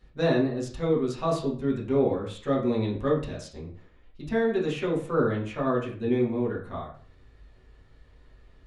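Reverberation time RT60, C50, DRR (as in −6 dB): 0.45 s, 7.0 dB, −7.0 dB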